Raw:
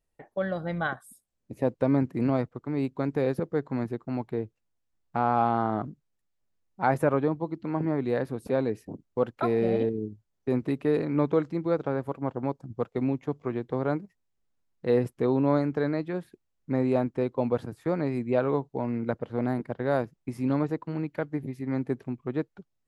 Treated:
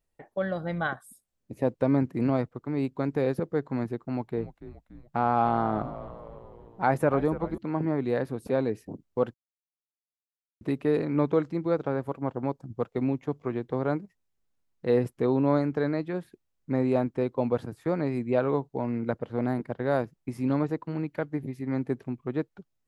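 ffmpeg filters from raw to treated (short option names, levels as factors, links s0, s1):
-filter_complex "[0:a]asettb=1/sr,asplit=3[s0][s1][s2];[s0]atrim=end=4.054[s3];[s1]atrim=start=4.05:end=7.58,asetpts=PTS-STARTPTS,afade=t=in:d=0.004:c=qsin,afade=t=out:st=3.526:d=0.004:c=qsin,asplit=7[s4][s5][s6][s7][s8][s9][s10];[s5]adelay=287,afreqshift=-85,volume=0.2[s11];[s6]adelay=574,afreqshift=-170,volume=0.114[s12];[s7]adelay=861,afreqshift=-255,volume=0.0646[s13];[s8]adelay=1148,afreqshift=-340,volume=0.0372[s14];[s9]adelay=1435,afreqshift=-425,volume=0.0211[s15];[s10]adelay=1722,afreqshift=-510,volume=0.012[s16];[s4][s11][s12][s13][s14][s15][s16]amix=inputs=7:normalize=0,atrim=end_sample=155673[s17];[s2]atrim=start=7.576[s18];[s3][s17]acrossfade=d=0.004:c1=hsin:c2=qsin[s19];[s19][s18]acrossfade=d=0.004:c1=qsin:c2=hsin,asplit=3[s20][s21][s22];[s20]atrim=end=9.34,asetpts=PTS-STARTPTS,afade=t=out:st=9.336:d=0.004:c=hsin[s23];[s21]atrim=start=9.34:end=10.61,asetpts=PTS-STARTPTS,volume=0[s24];[s22]atrim=start=10.61,asetpts=PTS-STARTPTS,afade=t=in:d=0.004:c=hsin[s25];[s23][s24][s25]concat=n=3:v=0:a=1"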